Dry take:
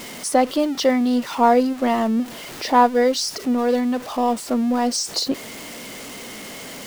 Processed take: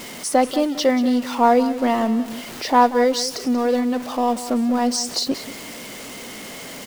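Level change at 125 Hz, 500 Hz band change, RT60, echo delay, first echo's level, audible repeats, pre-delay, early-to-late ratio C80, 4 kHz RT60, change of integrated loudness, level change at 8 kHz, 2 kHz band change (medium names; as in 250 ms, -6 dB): no reading, 0.0 dB, no reverb, 185 ms, -14.0 dB, 2, no reverb, no reverb, no reverb, 0.0 dB, 0.0 dB, 0.0 dB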